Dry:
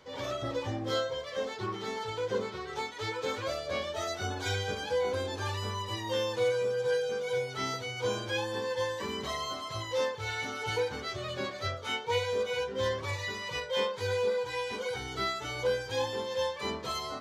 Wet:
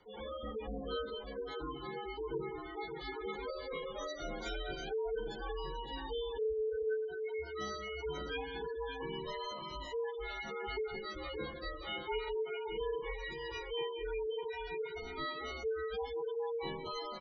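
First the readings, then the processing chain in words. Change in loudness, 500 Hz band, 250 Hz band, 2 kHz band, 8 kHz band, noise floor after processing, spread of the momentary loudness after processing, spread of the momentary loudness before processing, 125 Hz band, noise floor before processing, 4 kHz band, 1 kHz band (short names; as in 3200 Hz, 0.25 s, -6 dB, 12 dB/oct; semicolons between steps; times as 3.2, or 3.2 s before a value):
-7.0 dB, -6.0 dB, -6.0 dB, -8.5 dB, -16.0 dB, -46 dBFS, 5 LU, 5 LU, -13.0 dB, -41 dBFS, -9.0 dB, -7.0 dB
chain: tapped delay 0.132/0.18/0.571 s -13.5/-9.5/-7 dB; spectral gate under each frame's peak -15 dB strong; frequency shift -57 Hz; gain -7 dB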